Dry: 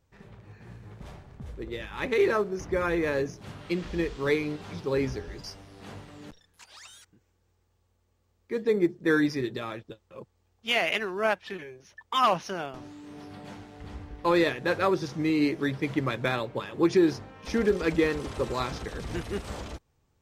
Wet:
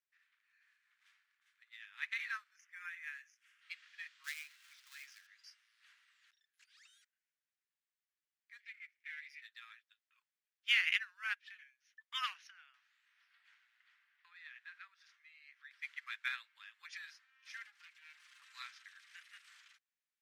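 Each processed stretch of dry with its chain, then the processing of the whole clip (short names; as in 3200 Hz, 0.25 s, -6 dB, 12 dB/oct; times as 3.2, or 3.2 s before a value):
2.56–3.62 HPF 1500 Hz + bell 4100 Hz -14 dB 0.43 oct
4.24–5.27 switching dead time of 0.12 ms + high shelf 4400 Hz +10 dB + compressor 2.5:1, threshold -27 dBFS
8.6–9.42 half-wave gain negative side -12 dB + resonant high-pass 2200 Hz, resonance Q 7.4 + compressor 2:1, threshold -44 dBFS
12.47–15.71 tone controls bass +2 dB, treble -8 dB + compressor, threshold -31 dBFS
17.65–18.42 minimum comb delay 5.7 ms + steep high-pass 230 Hz + compressor 10:1, threshold -34 dBFS
whole clip: steep high-pass 1600 Hz 36 dB/oct; high shelf 2900 Hz -12 dB; upward expander 1.5:1, over -52 dBFS; gain +2.5 dB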